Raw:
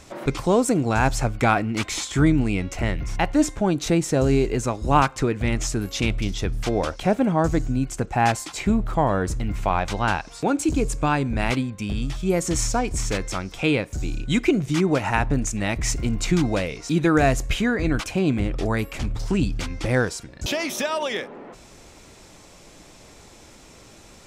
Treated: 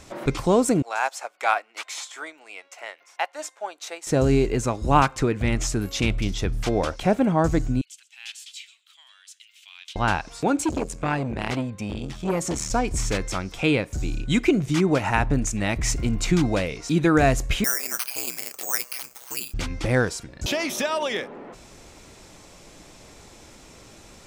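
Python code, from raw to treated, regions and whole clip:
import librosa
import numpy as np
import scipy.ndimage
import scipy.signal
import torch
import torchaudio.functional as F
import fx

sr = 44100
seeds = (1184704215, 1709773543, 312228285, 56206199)

y = fx.chain(x, sr, fx.highpass(hz=590.0, slope=24),
    fx.upward_expand(threshold_db=-43.0, expansion=1.5), at=(0.82, 4.07))
y = fx.chain(y, sr, fx.ladder_highpass(hz=2800.0, resonance_pct=60),
    fx.echo_single(ms=125, db=-19.0), at=(7.81, 9.96))
y = fx.chain(y, sr, fx.highpass(hz=65.0, slope=12),
    fx.high_shelf(hz=9200.0, db=-3.5),
    fx.transformer_sat(knee_hz=870.0), at=(10.65, 12.71))
y = fx.chain(y, sr, fx.highpass(hz=890.0, slope=12),
    fx.ring_mod(carrier_hz=64.0),
    fx.resample_bad(factor=6, down='filtered', up='zero_stuff'), at=(17.64, 19.54))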